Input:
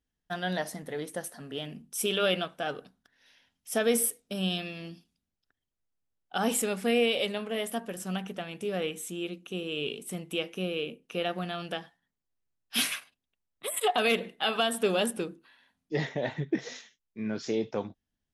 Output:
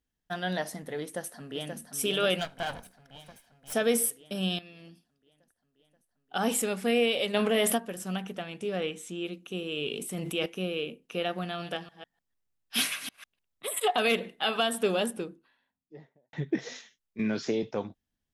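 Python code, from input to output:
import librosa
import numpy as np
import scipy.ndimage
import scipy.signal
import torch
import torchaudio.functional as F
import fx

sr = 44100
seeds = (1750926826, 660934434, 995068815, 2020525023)

y = fx.echo_throw(x, sr, start_s=1.02, length_s=0.75, ms=530, feedback_pct=65, wet_db=-5.5)
y = fx.lower_of_two(y, sr, delay_ms=1.3, at=(2.38, 3.72), fade=0.02)
y = fx.env_flatten(y, sr, amount_pct=70, at=(7.33, 7.76), fade=0.02)
y = fx.lowpass(y, sr, hz=fx.line((8.43, 11000.0), (9.23, 6300.0)), slope=12, at=(8.43, 9.23), fade=0.02)
y = fx.sustainer(y, sr, db_per_s=22.0, at=(9.91, 10.46))
y = fx.reverse_delay(y, sr, ms=150, wet_db=-10.5, at=(11.44, 13.74))
y = fx.studio_fade_out(y, sr, start_s=14.73, length_s=1.6)
y = fx.band_squash(y, sr, depth_pct=100, at=(17.19, 17.63))
y = fx.edit(y, sr, fx.fade_in_from(start_s=4.59, length_s=2.03, curve='qsin', floor_db=-13.5), tone=tone)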